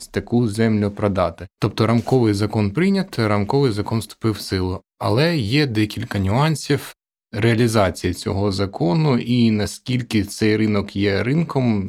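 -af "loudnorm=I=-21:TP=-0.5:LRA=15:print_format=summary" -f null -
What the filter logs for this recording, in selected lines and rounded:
Input Integrated:    -19.7 LUFS
Input True Peak:      -1.7 dBTP
Input LRA:             1.1 LU
Input Threshold:     -29.7 LUFS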